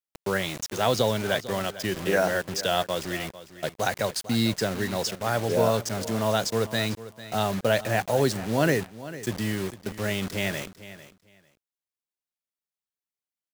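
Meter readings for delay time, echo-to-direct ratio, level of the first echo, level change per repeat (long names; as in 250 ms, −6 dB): 449 ms, −15.5 dB, −15.5 dB, −15.0 dB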